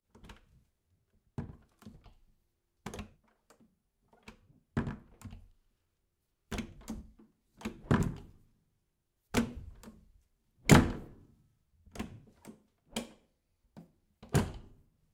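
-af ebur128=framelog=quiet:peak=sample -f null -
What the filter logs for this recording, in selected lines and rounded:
Integrated loudness:
  I:         -33.5 LUFS
  Threshold: -47.1 LUFS
Loudness range:
  LRA:        19.1 LU
  Threshold: -57.6 LUFS
  LRA low:   -51.8 LUFS
  LRA high:  -32.6 LUFS
Sample peak:
  Peak:      -10.4 dBFS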